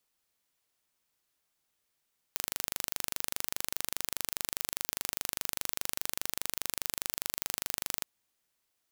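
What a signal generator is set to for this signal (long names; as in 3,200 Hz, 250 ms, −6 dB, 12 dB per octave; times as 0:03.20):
impulse train 24.9 per second, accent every 0, −4.5 dBFS 5.68 s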